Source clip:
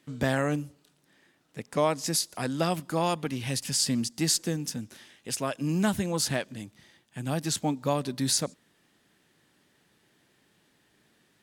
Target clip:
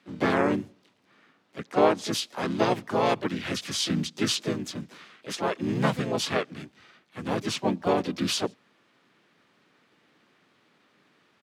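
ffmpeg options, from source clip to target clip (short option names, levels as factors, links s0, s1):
-filter_complex "[0:a]acrusher=bits=9:mode=log:mix=0:aa=0.000001,acrossover=split=200 5100:gain=0.0708 1 0.158[s0][s1][s2];[s0][s1][s2]amix=inputs=3:normalize=0,asplit=4[s3][s4][s5][s6];[s4]asetrate=29433,aresample=44100,atempo=1.49831,volume=0.891[s7];[s5]asetrate=35002,aresample=44100,atempo=1.25992,volume=0.794[s8];[s6]asetrate=55563,aresample=44100,atempo=0.793701,volume=0.562[s9];[s3][s7][s8][s9]amix=inputs=4:normalize=0"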